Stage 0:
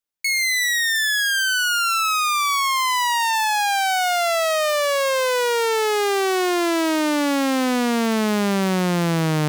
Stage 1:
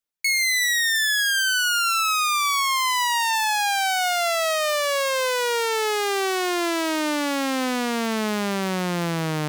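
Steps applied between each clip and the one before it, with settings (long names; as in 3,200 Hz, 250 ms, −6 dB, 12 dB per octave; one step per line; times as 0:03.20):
reverb reduction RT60 1.6 s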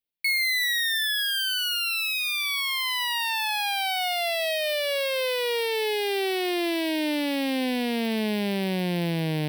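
phaser with its sweep stopped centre 3,000 Hz, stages 4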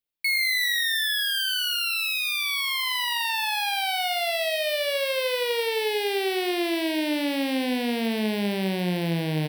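repeating echo 83 ms, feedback 33%, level −9.5 dB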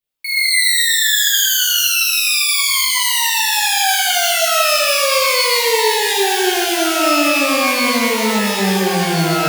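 reverb with rising layers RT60 1.3 s, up +12 semitones, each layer −2 dB, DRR −7 dB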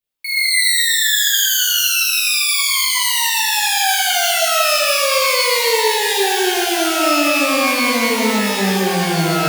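convolution reverb RT60 1.4 s, pre-delay 140 ms, DRR 12 dB
level −1 dB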